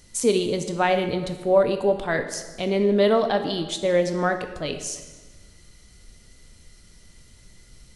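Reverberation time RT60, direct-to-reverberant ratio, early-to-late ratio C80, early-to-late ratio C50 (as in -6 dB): 1.3 s, 7.0 dB, 11.0 dB, 9.0 dB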